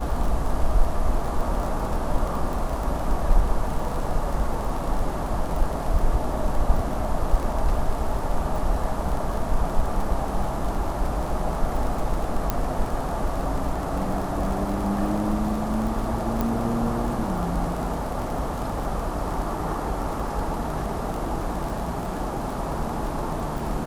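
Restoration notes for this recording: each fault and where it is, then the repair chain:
crackle 29/s -28 dBFS
12.5 pop -8 dBFS
16.41 pop -12 dBFS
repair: de-click

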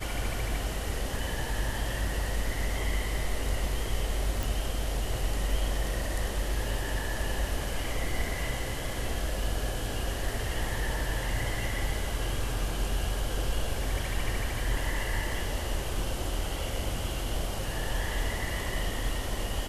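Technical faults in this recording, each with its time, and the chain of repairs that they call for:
4.43 pop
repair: de-click

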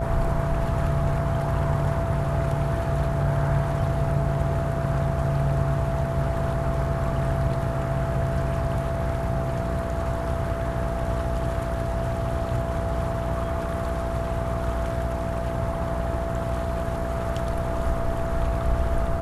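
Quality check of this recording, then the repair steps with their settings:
buzz 60 Hz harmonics 14 -30 dBFS
tone 670 Hz -30 dBFS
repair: de-hum 60 Hz, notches 14; notch 670 Hz, Q 30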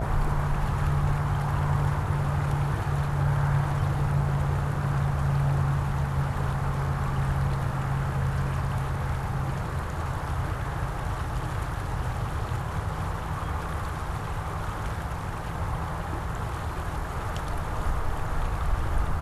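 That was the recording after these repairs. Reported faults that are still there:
none

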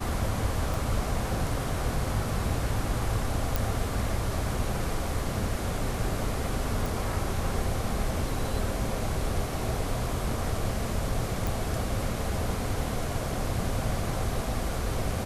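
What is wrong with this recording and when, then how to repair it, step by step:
0.74 pop
3.56 pop
6.86 pop
11.47 pop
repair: de-click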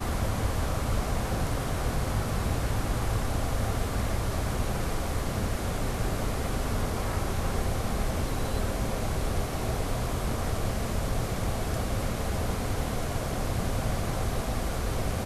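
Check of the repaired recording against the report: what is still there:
0.74 pop

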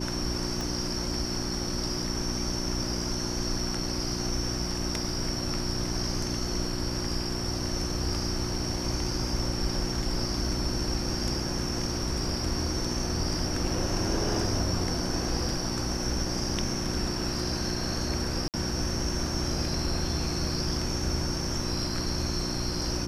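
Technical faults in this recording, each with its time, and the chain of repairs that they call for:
hum 60 Hz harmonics 6 -34 dBFS
0.61 pop
18.48–18.54 gap 58 ms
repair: de-click; de-hum 60 Hz, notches 6; interpolate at 18.48, 58 ms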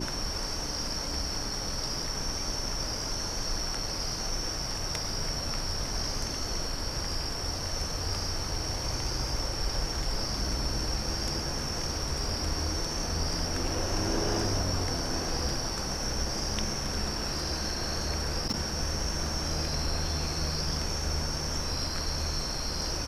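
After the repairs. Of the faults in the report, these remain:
0.61 pop

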